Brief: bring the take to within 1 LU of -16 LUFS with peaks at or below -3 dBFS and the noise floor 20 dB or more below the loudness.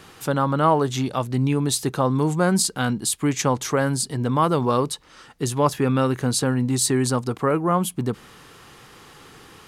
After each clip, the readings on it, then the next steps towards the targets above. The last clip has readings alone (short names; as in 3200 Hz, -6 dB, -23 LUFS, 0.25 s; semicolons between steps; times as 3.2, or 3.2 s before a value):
loudness -22.0 LUFS; peak -6.0 dBFS; loudness target -16.0 LUFS
-> gain +6 dB; limiter -3 dBFS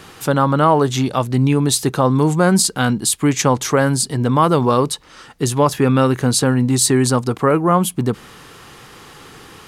loudness -16.0 LUFS; peak -3.0 dBFS; noise floor -42 dBFS